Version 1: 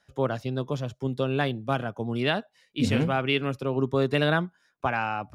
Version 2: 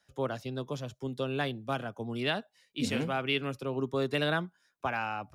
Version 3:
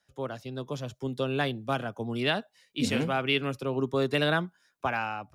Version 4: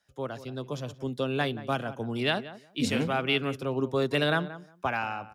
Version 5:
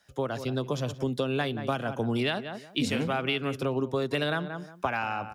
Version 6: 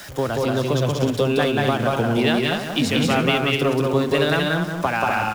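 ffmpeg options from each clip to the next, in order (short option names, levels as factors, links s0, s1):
-filter_complex "[0:a]highshelf=f=3700:g=6.5,acrossover=split=160|890[s0][s1][s2];[s0]alimiter=level_in=3.16:limit=0.0631:level=0:latency=1:release=444,volume=0.316[s3];[s3][s1][s2]amix=inputs=3:normalize=0,volume=0.501"
-af "dynaudnorm=f=450:g=3:m=2,volume=0.75"
-filter_complex "[0:a]asplit=2[s0][s1];[s1]adelay=178,lowpass=f=1600:p=1,volume=0.2,asplit=2[s2][s3];[s3]adelay=178,lowpass=f=1600:p=1,volume=0.17[s4];[s0][s2][s4]amix=inputs=3:normalize=0"
-af "acompressor=threshold=0.02:ratio=6,volume=2.66"
-af "aeval=exprs='val(0)+0.5*0.0112*sgn(val(0))':c=same,aecho=1:1:183.7|247.8:0.794|0.501,volume=2"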